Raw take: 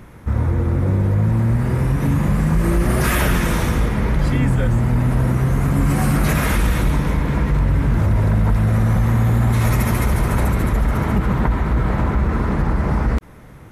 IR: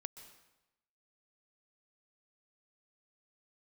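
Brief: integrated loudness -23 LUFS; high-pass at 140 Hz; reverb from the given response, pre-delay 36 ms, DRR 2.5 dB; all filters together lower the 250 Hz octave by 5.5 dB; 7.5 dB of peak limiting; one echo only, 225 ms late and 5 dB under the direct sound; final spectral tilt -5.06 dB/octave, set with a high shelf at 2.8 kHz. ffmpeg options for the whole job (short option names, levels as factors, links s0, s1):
-filter_complex "[0:a]highpass=140,equalizer=f=250:t=o:g=-6.5,highshelf=f=2800:g=6,alimiter=limit=0.2:level=0:latency=1,aecho=1:1:225:0.562,asplit=2[s0][s1];[1:a]atrim=start_sample=2205,adelay=36[s2];[s1][s2]afir=irnorm=-1:irlink=0,volume=1.19[s3];[s0][s3]amix=inputs=2:normalize=0,volume=0.75"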